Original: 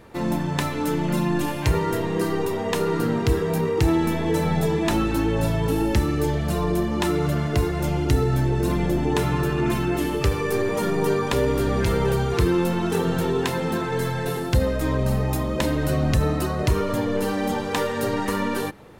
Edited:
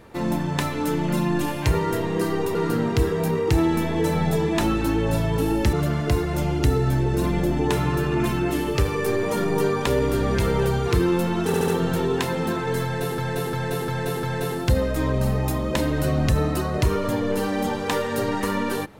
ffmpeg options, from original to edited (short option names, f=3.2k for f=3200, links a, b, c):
-filter_complex "[0:a]asplit=10[a][b][c][d][e][f][g][h][i][j];[a]atrim=end=2.552[k];[b]atrim=start=2.848:end=6.032[l];[c]atrim=start=7.188:end=13.002[m];[d]atrim=start=12.928:end=13.002[n];[e]atrim=start=12.928:end=13.002[o];[f]atrim=start=12.928:end=14.432[p];[g]atrim=start=14.078:end=14.432[q];[h]atrim=start=14.078:end=14.432[r];[i]atrim=start=14.078:end=14.432[s];[j]atrim=start=14.078[t];[k][l]acrossfade=d=0.004:c1=hsin:c2=hsin[u];[u][m]acrossfade=d=0.004:c1=hsin:c2=hsin[v];[v][n]acrossfade=d=0.004:c1=hsin:c2=hsin[w];[w][o]acrossfade=d=0.004:c1=hsin:c2=hsin[x];[x][p]acrossfade=d=0.004:c1=hsin:c2=hsin[y];[y][q]acrossfade=d=0.004:c1=hsin:c2=hsin[z];[z][r]acrossfade=d=0.004:c1=hsin:c2=hsin[aa];[aa][s]acrossfade=d=0.004:c1=hsin:c2=hsin[ab];[ab][t]acrossfade=d=0.004:c1=hsin:c2=hsin"